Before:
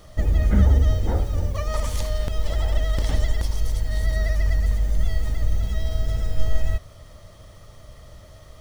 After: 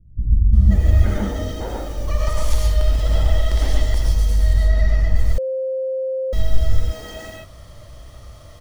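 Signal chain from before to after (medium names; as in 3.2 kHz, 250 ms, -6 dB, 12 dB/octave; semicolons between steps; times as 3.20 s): 1.04–1.97 s: bass shelf 140 Hz -10 dB; 4.00–4.63 s: low-pass 3.1 kHz 6 dB/octave; bands offset in time lows, highs 530 ms, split 220 Hz; gated-style reverb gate 160 ms rising, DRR -1 dB; 5.38–6.33 s: bleep 525 Hz -20 dBFS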